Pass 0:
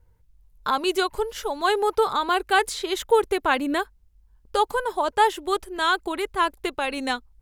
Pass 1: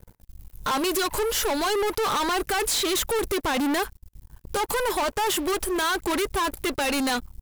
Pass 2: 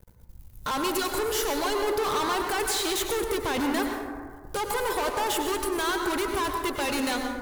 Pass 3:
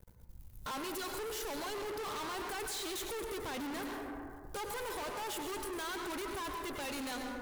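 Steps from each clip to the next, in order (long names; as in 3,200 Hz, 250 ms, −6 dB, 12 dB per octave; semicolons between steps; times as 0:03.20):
high-shelf EQ 6,600 Hz +10.5 dB; brickwall limiter −17.5 dBFS, peak gain reduction 11.5 dB; leveller curve on the samples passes 5; level −4 dB
dense smooth reverb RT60 1.7 s, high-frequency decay 0.35×, pre-delay 85 ms, DRR 3 dB; level −4 dB
soft clipping −33.5 dBFS, distortion −8 dB; level −4.5 dB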